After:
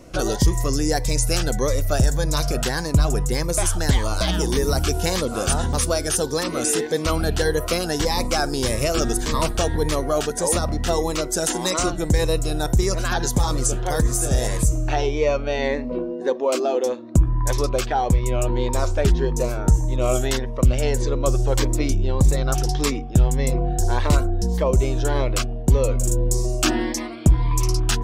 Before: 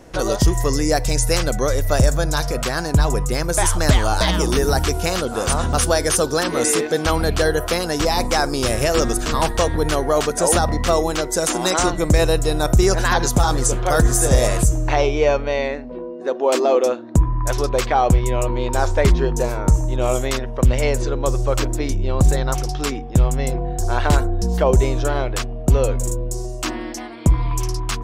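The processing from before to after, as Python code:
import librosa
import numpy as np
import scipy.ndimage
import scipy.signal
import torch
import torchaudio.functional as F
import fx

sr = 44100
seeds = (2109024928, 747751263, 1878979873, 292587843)

y = fx.rider(x, sr, range_db=10, speed_s=0.5)
y = fx.notch_cascade(y, sr, direction='rising', hz=1.7)
y = y * 10.0 ** (-1.5 / 20.0)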